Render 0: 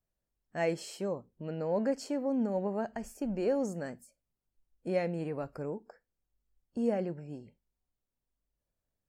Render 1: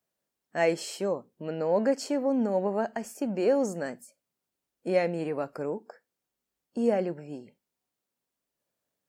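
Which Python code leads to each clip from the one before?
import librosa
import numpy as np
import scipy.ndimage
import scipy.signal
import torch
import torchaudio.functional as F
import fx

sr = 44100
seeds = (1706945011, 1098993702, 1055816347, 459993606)

y = scipy.signal.sosfilt(scipy.signal.butter(2, 190.0, 'highpass', fs=sr, output='sos'), x)
y = fx.low_shelf(y, sr, hz=340.0, db=-3.0)
y = F.gain(torch.from_numpy(y), 7.0).numpy()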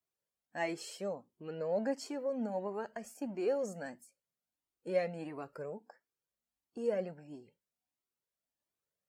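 y = fx.comb_cascade(x, sr, direction='rising', hz=1.5)
y = F.gain(torch.from_numpy(y), -4.5).numpy()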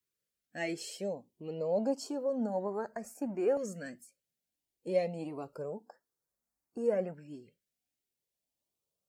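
y = fx.filter_lfo_notch(x, sr, shape='saw_up', hz=0.28, low_hz=740.0, high_hz=4100.0, q=0.78)
y = F.gain(torch.from_numpy(y), 3.5).numpy()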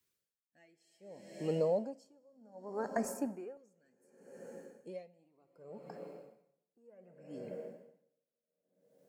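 y = fx.rev_plate(x, sr, seeds[0], rt60_s=4.1, hf_ratio=0.9, predelay_ms=0, drr_db=12.0)
y = y * 10.0 ** (-38 * (0.5 - 0.5 * np.cos(2.0 * np.pi * 0.66 * np.arange(len(y)) / sr)) / 20.0)
y = F.gain(torch.from_numpy(y), 6.5).numpy()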